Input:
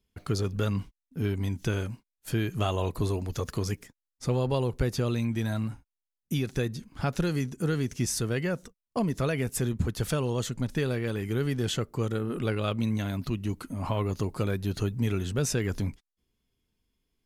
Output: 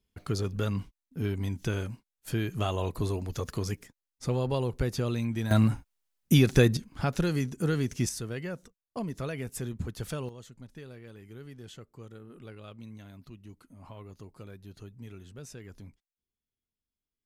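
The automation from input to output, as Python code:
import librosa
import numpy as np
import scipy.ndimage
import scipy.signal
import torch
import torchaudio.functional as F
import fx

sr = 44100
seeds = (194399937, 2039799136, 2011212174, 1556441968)

y = fx.gain(x, sr, db=fx.steps((0.0, -2.0), (5.51, 8.5), (6.77, 0.0), (8.09, -7.0), (10.29, -17.5)))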